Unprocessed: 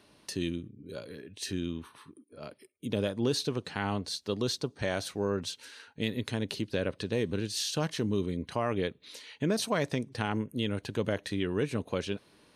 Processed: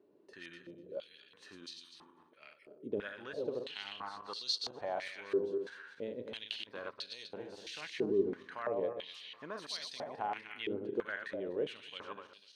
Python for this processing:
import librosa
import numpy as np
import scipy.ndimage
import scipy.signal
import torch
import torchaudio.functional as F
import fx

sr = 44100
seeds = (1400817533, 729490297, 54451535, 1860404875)

y = fx.reverse_delay_fb(x, sr, ms=124, feedback_pct=57, wet_db=-5.0)
y = fx.filter_held_bandpass(y, sr, hz=3.0, low_hz=390.0, high_hz=4400.0)
y = y * librosa.db_to_amplitude(2.5)